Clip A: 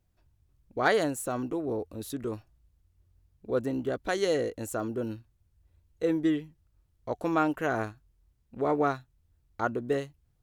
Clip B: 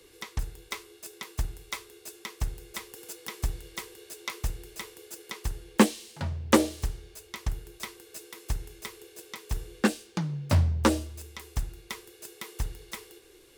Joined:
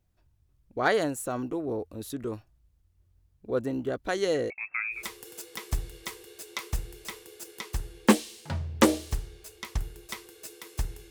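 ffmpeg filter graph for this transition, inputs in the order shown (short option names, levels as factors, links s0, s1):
-filter_complex "[0:a]asettb=1/sr,asplit=3[s0][s1][s2];[s0]atrim=end=4.504[s3];[s1]atrim=start=4.5:end=5.04,asetpts=PTS-STARTPTS,afade=t=in:d=0.004:c=qsin,afade=t=out:st=0.536:d=0.004:c=qsin,lowpass=f=2300:t=q:w=0.5098,lowpass=f=2300:t=q:w=0.6013,lowpass=f=2300:t=q:w=0.9,lowpass=f=2300:t=q:w=2.563,afreqshift=-2700[s4];[s2]atrim=start=5.036[s5];[s3][s4]acrossfade=d=0.004:c1=hsin:c2=qsin[s6];[s6][s5]acrossfade=d=0.004:c1=qsin:c2=hsin,apad=whole_dur=11.1,atrim=end=11.1,atrim=end=5.04,asetpts=PTS-STARTPTS[s7];[1:a]atrim=start=2.61:end=8.81,asetpts=PTS-STARTPTS[s8];[s7][s8]acrossfade=d=0.14:c1=tri:c2=tri"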